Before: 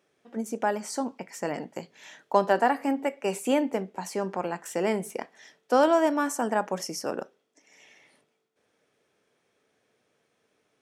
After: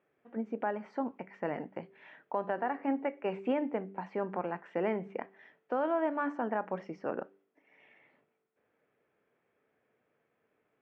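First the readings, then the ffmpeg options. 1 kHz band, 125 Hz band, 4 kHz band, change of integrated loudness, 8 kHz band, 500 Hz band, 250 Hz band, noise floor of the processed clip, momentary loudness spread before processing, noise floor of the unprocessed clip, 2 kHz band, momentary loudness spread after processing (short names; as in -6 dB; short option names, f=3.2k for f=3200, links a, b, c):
-8.5 dB, -5.5 dB, under -15 dB, -8.0 dB, under -40 dB, -7.5 dB, -6.5 dB, -79 dBFS, 15 LU, -74 dBFS, -8.0 dB, 11 LU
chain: -af "lowpass=f=2.4k:w=0.5412,lowpass=f=2.4k:w=1.3066,bandreject=f=97.37:t=h:w=4,bandreject=f=194.74:t=h:w=4,bandreject=f=292.11:t=h:w=4,bandreject=f=389.48:t=h:w=4,alimiter=limit=-17dB:level=0:latency=1:release=256,volume=-4dB"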